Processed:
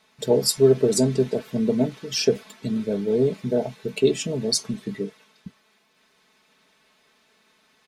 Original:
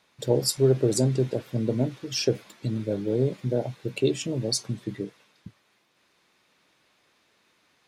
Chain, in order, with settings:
comb filter 4.6 ms, depth 74%
level +2 dB

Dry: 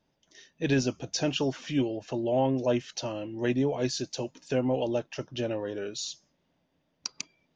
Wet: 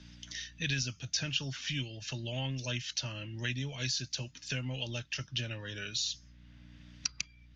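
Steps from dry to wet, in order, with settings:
drawn EQ curve 120 Hz 0 dB, 380 Hz −21 dB, 960 Hz −15 dB, 1,500 Hz −2 dB, 3,500 Hz +3 dB
mains hum 60 Hz, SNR 33 dB
low-pass filter 6,700 Hz 24 dB per octave
notch filter 740 Hz, Q 12
multiband upward and downward compressor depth 70%

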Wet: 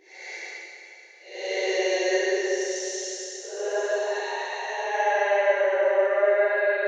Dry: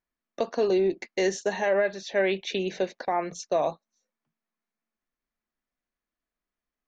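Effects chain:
Butterworth high-pass 400 Hz 48 dB per octave
extreme stretch with random phases 7.7×, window 0.10 s, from 0:00.98
four-comb reverb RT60 3.4 s, combs from 32 ms, DRR 2 dB

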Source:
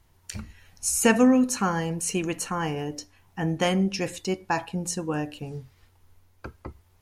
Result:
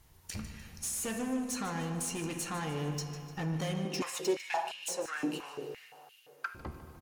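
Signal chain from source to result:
high-shelf EQ 5,100 Hz +6.5 dB
downward compressor, threshold −28 dBFS, peak gain reduction 14.5 dB
tube saturation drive 33 dB, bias 0.25
repeating echo 150 ms, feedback 45%, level −13 dB
convolution reverb RT60 3.0 s, pre-delay 3 ms, DRR 5.5 dB
0:03.85–0:06.55: high-pass on a step sequencer 5.8 Hz 270–2,900 Hz

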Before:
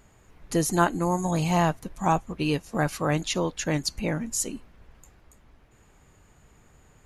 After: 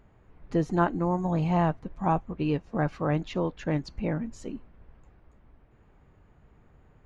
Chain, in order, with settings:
head-to-tape spacing loss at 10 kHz 35 dB

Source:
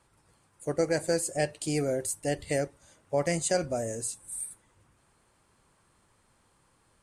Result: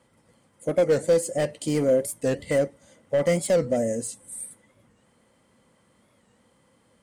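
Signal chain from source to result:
high-pass filter 59 Hz
hard clipping −25 dBFS, distortion −11 dB
hollow resonant body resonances 230/510/2,000/3,100 Hz, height 12 dB, ringing for 30 ms
wow of a warped record 45 rpm, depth 160 cents

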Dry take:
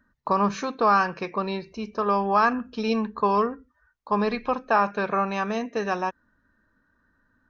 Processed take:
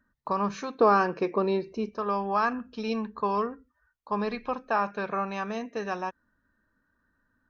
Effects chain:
0:00.80–0:01.89: parametric band 370 Hz +11.5 dB 1.7 octaves
level −5.5 dB

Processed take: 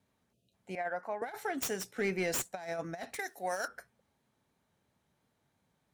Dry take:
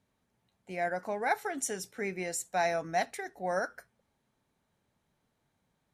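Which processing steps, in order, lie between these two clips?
stylus tracing distortion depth 0.097 ms
0:00.33–0:00.54: time-frequency box erased 690–2,400 Hz
0:03.19–0:03.68: RIAA equalisation recording
high-pass filter 50 Hz
0:00.75–0:01.22: three-way crossover with the lows and the highs turned down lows −12 dB, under 550 Hz, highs −13 dB, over 2,100 Hz
compressor whose output falls as the input rises −33 dBFS, ratio −0.5
0:01.96–0:02.51: leveller curve on the samples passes 1
pitch vibrato 2.9 Hz 32 cents
level −1.5 dB

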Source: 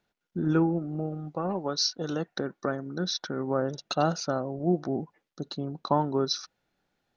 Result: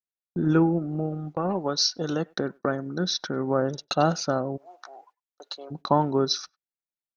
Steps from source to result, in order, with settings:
noise gate −42 dBFS, range −36 dB
0:04.56–0:05.70: high-pass filter 1,200 Hz → 480 Hz 24 dB per octave
far-end echo of a speakerphone 100 ms, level −29 dB
level +3.5 dB

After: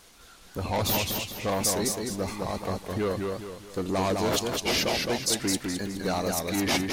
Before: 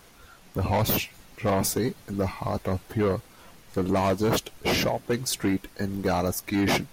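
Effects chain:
graphic EQ with 10 bands 125 Hz −5 dB, 4,000 Hz +5 dB, 8,000 Hz +6 dB
feedback echo with a swinging delay time 210 ms, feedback 39%, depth 124 cents, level −3.5 dB
level −3.5 dB

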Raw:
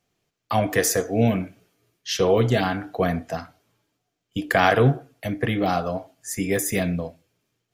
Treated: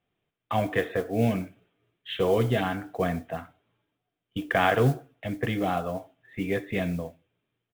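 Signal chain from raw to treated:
downsampling to 8,000 Hz
noise that follows the level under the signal 26 dB
level −4.5 dB

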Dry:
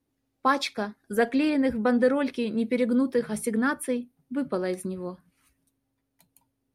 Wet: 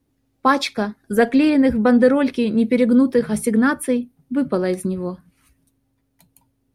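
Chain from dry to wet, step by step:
low-shelf EQ 230 Hz +7 dB
level +6 dB

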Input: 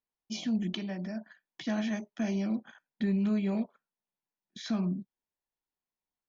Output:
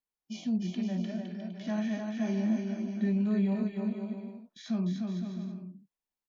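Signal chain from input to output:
harmonic and percussive parts rebalanced percussive −13 dB
bouncing-ball delay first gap 300 ms, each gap 0.7×, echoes 5

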